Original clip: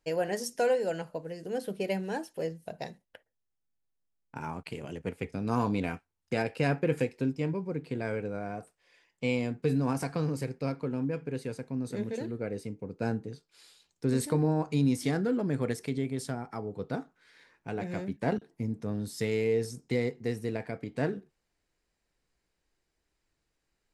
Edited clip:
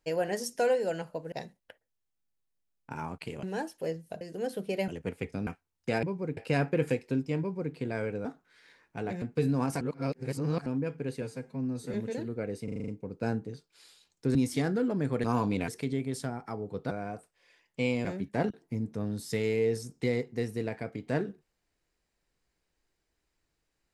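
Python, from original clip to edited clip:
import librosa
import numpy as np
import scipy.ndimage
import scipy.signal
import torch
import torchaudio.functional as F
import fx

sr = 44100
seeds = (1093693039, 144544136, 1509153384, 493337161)

y = fx.edit(x, sr, fx.swap(start_s=1.32, length_s=0.67, other_s=2.77, other_length_s=2.11),
    fx.move(start_s=5.47, length_s=0.44, to_s=15.73),
    fx.duplicate(start_s=7.5, length_s=0.34, to_s=6.47),
    fx.swap(start_s=8.35, length_s=1.14, other_s=16.96, other_length_s=0.97),
    fx.reverse_span(start_s=10.08, length_s=0.85),
    fx.stretch_span(start_s=11.49, length_s=0.48, factor=1.5),
    fx.stutter(start_s=12.67, slice_s=0.04, count=7),
    fx.cut(start_s=14.14, length_s=0.7), tone=tone)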